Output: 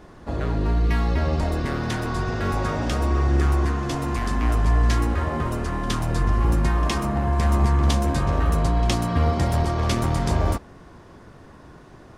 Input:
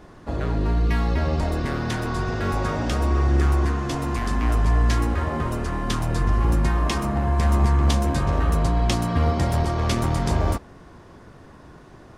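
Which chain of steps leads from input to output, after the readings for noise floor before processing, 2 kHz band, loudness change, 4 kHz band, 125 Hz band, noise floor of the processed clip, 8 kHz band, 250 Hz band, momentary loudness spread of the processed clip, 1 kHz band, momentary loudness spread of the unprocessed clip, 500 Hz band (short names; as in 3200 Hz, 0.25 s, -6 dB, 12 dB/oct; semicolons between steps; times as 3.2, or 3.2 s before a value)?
-46 dBFS, 0.0 dB, 0.0 dB, 0.0 dB, 0.0 dB, -46 dBFS, 0.0 dB, 0.0 dB, 6 LU, 0.0 dB, 6 LU, 0.0 dB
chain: pre-echo 66 ms -21 dB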